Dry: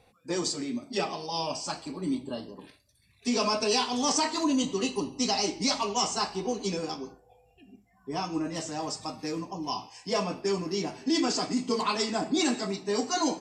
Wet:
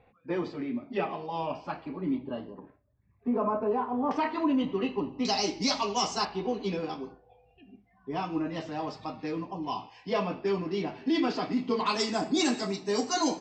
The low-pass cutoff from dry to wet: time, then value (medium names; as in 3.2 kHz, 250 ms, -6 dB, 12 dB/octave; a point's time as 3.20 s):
low-pass 24 dB/octave
2.6 kHz
from 2.59 s 1.3 kHz
from 4.11 s 2.6 kHz
from 5.25 s 5.8 kHz
from 6.25 s 3.7 kHz
from 11.86 s 7.4 kHz